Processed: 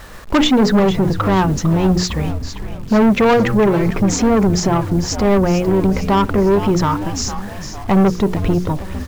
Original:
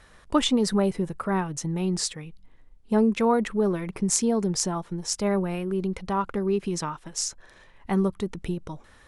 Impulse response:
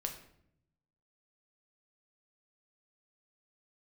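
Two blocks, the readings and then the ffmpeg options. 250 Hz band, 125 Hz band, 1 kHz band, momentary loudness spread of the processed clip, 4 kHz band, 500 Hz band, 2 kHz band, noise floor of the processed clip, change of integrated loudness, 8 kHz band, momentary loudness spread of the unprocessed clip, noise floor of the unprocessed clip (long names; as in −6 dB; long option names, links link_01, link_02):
+11.0 dB, +14.0 dB, +11.5 dB, 10 LU, +8.0 dB, +10.5 dB, +13.0 dB, −29 dBFS, +10.5 dB, +3.0 dB, 9 LU, −54 dBFS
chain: -filter_complex "[0:a]lowpass=frequency=1500:poles=1,bandreject=frequency=60:width_type=h:width=6,bandreject=frequency=120:width_type=h:width=6,bandreject=frequency=180:width_type=h:width=6,bandreject=frequency=240:width_type=h:width=6,bandreject=frequency=300:width_type=h:width=6,bandreject=frequency=360:width_type=h:width=6,bandreject=frequency=420:width_type=h:width=6,bandreject=frequency=480:width_type=h:width=6,aresample=16000,asoftclip=type=tanh:threshold=-27.5dB,aresample=44100,acrusher=bits=9:mix=0:aa=0.000001,asplit=2[link_01][link_02];[link_02]asplit=6[link_03][link_04][link_05][link_06][link_07][link_08];[link_03]adelay=453,afreqshift=-100,volume=-11dB[link_09];[link_04]adelay=906,afreqshift=-200,volume=-16.5dB[link_10];[link_05]adelay=1359,afreqshift=-300,volume=-22dB[link_11];[link_06]adelay=1812,afreqshift=-400,volume=-27.5dB[link_12];[link_07]adelay=2265,afreqshift=-500,volume=-33.1dB[link_13];[link_08]adelay=2718,afreqshift=-600,volume=-38.6dB[link_14];[link_09][link_10][link_11][link_12][link_13][link_14]amix=inputs=6:normalize=0[link_15];[link_01][link_15]amix=inputs=2:normalize=0,alimiter=level_in=25.5dB:limit=-1dB:release=50:level=0:latency=1,volume=-7dB"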